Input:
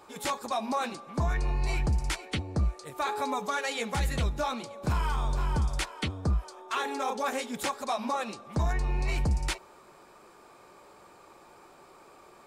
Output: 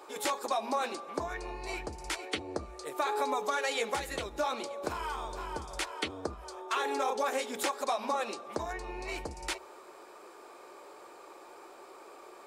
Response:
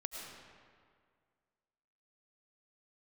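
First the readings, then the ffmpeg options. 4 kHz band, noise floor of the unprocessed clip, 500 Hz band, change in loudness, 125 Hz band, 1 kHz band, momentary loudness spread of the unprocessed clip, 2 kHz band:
-1.0 dB, -55 dBFS, +1.0 dB, -3.5 dB, -19.0 dB, -1.0 dB, 4 LU, -1.5 dB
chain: -af "acompressor=threshold=0.0316:ratio=6,lowshelf=f=240:t=q:w=1.5:g=-13.5,bandreject=f=60:t=h:w=6,bandreject=f=120:t=h:w=6,bandreject=f=180:t=h:w=6,bandreject=f=240:t=h:w=6,volume=1.26"

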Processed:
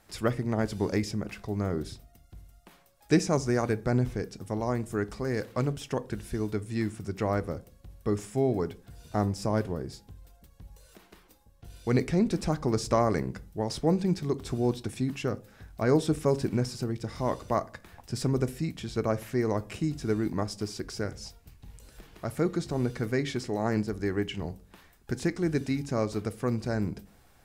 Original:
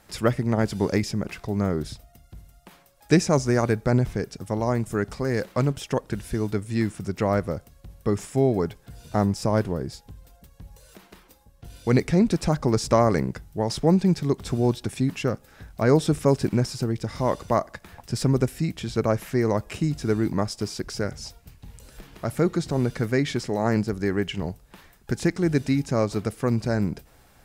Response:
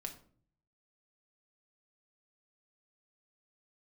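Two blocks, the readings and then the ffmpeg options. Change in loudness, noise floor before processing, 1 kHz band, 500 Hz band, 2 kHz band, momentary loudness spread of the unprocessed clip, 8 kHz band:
-5.5 dB, -56 dBFS, -5.0 dB, -5.0 dB, -5.0 dB, 10 LU, -5.5 dB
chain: -filter_complex "[0:a]asplit=2[s0][s1];[1:a]atrim=start_sample=2205,asetrate=74970,aresample=44100[s2];[s1][s2]afir=irnorm=-1:irlink=0,volume=1.19[s3];[s0][s3]amix=inputs=2:normalize=0,volume=0.376"

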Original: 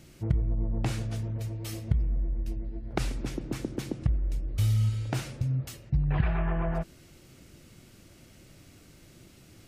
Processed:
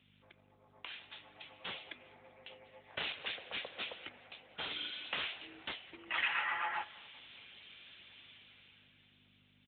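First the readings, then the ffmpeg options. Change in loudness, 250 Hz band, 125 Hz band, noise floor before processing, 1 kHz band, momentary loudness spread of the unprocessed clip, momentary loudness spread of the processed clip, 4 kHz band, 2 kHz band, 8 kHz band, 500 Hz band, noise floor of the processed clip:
-9.0 dB, -23.5 dB, -38.0 dB, -55 dBFS, -1.0 dB, 8 LU, 20 LU, +6.0 dB, +5.5 dB, under -35 dB, -13.0 dB, -68 dBFS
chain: -af "highpass=f=820:p=1,aderivative,dynaudnorm=f=220:g=13:m=7.08,afreqshift=190,aeval=exprs='val(0)+0.000562*(sin(2*PI*50*n/s)+sin(2*PI*2*50*n/s)/2+sin(2*PI*3*50*n/s)/3+sin(2*PI*4*50*n/s)/4+sin(2*PI*5*50*n/s)/5)':c=same,aeval=exprs='0.0501*(abs(mod(val(0)/0.0501+3,4)-2)-1)':c=same,aecho=1:1:196|392|588|784:0.0891|0.0472|0.025|0.0133,volume=1.58" -ar 8000 -c:a libopencore_amrnb -b:a 10200

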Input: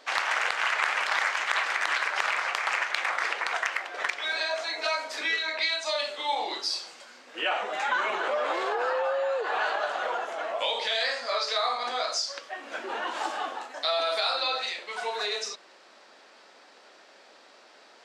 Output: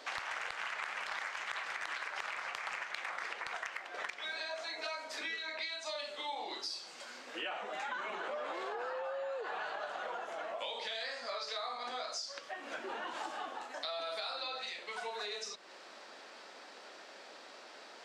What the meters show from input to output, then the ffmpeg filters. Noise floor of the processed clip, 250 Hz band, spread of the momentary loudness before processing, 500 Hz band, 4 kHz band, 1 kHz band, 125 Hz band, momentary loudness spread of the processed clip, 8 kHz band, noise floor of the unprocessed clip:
-53 dBFS, -7.5 dB, 7 LU, -11.0 dB, -11.5 dB, -11.5 dB, no reading, 13 LU, -10.5 dB, -55 dBFS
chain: -filter_complex "[0:a]acrossover=split=180[s0][s1];[s1]acompressor=threshold=0.00631:ratio=3[s2];[s0][s2]amix=inputs=2:normalize=0,volume=1.19"

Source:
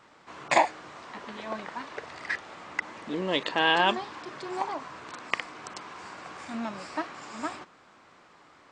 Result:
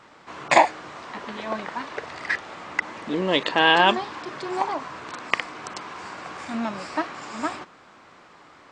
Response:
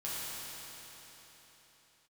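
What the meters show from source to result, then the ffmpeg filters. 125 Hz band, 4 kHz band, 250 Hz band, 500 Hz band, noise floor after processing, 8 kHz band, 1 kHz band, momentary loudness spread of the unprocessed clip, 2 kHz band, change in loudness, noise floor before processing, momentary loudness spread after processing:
+6.0 dB, +5.5 dB, +6.0 dB, +6.0 dB, -51 dBFS, +4.5 dB, +6.0 dB, 18 LU, +6.0 dB, +6.0 dB, -57 dBFS, 18 LU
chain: -af "highshelf=f=8600:g=-4.5,volume=2"

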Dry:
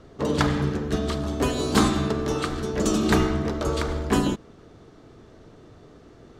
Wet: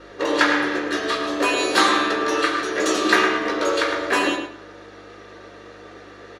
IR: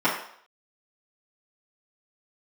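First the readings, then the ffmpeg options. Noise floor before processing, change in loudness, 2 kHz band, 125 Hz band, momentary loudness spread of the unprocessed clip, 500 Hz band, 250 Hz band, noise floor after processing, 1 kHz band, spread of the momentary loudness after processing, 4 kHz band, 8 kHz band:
-50 dBFS, +4.5 dB, +12.5 dB, -19.5 dB, 6 LU, +4.0 dB, -1.0 dB, -43 dBFS, +8.0 dB, 6 LU, +8.5 dB, +4.0 dB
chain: -filter_complex "[0:a]highpass=f=980:p=1,asplit=2[s0][s1];[s1]acompressor=threshold=0.01:ratio=6,volume=1[s2];[s0][s2]amix=inputs=2:normalize=0,aeval=exprs='val(0)+0.00794*(sin(2*PI*50*n/s)+sin(2*PI*2*50*n/s)/2+sin(2*PI*3*50*n/s)/3+sin(2*PI*4*50*n/s)/4+sin(2*PI*5*50*n/s)/5)':c=same,asplit=2[s3][s4];[s4]adelay=109,lowpass=f=2300:p=1,volume=0.562,asplit=2[s5][s6];[s6]adelay=109,lowpass=f=2300:p=1,volume=0.26,asplit=2[s7][s8];[s8]adelay=109,lowpass=f=2300:p=1,volume=0.26[s9];[s3][s5][s7][s9]amix=inputs=4:normalize=0[s10];[1:a]atrim=start_sample=2205,asetrate=83790,aresample=44100[s11];[s10][s11]afir=irnorm=-1:irlink=0,volume=0.708"

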